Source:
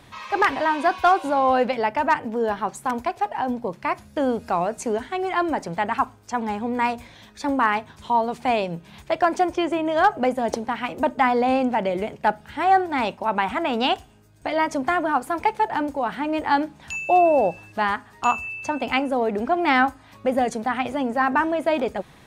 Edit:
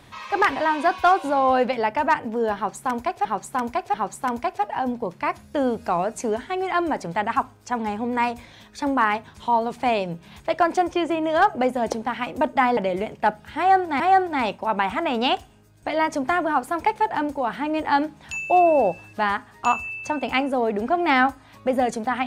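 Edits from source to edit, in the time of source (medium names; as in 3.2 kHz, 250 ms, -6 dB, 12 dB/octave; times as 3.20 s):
2.56–3.25 s: loop, 3 plays
11.39–11.78 s: delete
12.59–13.01 s: loop, 2 plays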